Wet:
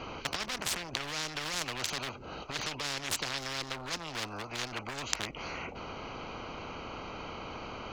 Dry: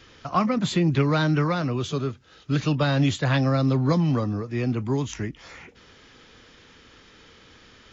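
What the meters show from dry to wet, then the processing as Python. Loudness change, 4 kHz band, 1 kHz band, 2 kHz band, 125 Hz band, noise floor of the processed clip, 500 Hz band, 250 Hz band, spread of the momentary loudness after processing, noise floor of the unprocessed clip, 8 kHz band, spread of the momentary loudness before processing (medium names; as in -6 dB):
-12.5 dB, 0.0 dB, -8.5 dB, -4.0 dB, -23.0 dB, -45 dBFS, -14.0 dB, -20.5 dB, 9 LU, -53 dBFS, no reading, 9 LU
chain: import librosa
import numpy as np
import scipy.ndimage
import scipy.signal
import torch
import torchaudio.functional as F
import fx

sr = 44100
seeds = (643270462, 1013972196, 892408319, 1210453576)

y = fx.wiener(x, sr, points=25)
y = fx.over_compress(y, sr, threshold_db=-27.0, ratio=-1.0)
y = fx.spectral_comp(y, sr, ratio=10.0)
y = y * librosa.db_to_amplitude(6.0)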